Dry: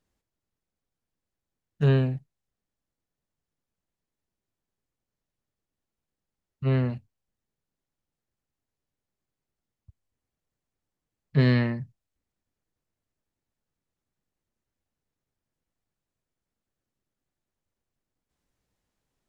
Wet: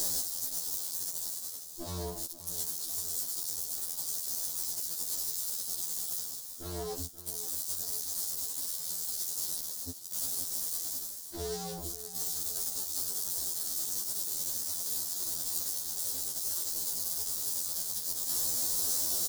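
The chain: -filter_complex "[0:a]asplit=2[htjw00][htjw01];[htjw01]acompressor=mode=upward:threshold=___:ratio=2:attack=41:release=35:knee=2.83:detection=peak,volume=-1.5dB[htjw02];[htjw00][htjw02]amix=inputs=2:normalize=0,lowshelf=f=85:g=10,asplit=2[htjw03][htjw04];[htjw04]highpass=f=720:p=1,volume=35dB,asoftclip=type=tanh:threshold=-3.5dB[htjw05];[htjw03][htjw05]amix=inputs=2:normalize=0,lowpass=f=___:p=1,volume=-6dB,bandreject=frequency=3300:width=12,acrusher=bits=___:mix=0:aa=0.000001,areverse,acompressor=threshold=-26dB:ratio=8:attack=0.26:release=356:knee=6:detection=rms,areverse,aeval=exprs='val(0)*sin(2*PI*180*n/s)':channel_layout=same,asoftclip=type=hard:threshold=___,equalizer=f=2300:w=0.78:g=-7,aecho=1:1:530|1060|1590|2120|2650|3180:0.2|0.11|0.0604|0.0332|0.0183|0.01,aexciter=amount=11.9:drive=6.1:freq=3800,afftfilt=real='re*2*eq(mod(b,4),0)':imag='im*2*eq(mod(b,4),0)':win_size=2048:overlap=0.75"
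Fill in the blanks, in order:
-43dB, 1000, 6, -33dB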